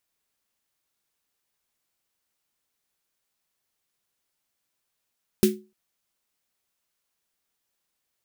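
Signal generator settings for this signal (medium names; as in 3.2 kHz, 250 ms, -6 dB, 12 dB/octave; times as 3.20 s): snare drum length 0.30 s, tones 210 Hz, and 370 Hz, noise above 1.7 kHz, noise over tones -9 dB, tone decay 0.30 s, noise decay 0.20 s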